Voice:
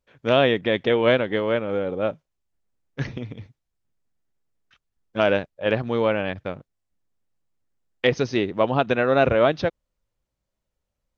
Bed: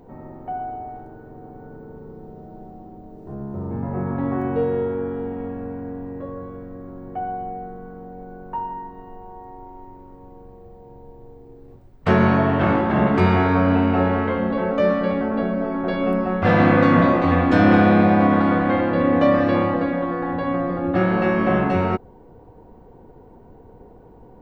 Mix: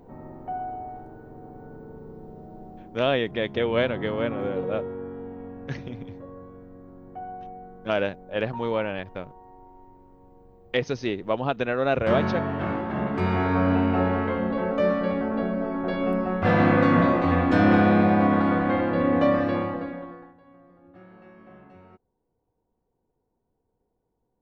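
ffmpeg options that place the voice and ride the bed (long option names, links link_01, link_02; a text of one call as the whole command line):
ffmpeg -i stem1.wav -i stem2.wav -filter_complex "[0:a]adelay=2700,volume=-5dB[link_01];[1:a]volume=2.5dB,afade=type=out:start_time=2.77:duration=0.44:silence=0.473151,afade=type=in:start_time=13.14:duration=0.5:silence=0.530884,afade=type=out:start_time=19.23:duration=1.11:silence=0.0473151[link_02];[link_01][link_02]amix=inputs=2:normalize=0" out.wav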